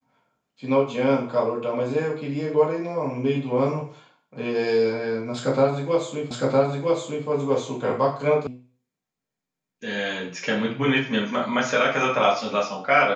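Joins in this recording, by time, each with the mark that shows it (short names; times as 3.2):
6.31 repeat of the last 0.96 s
8.47 sound cut off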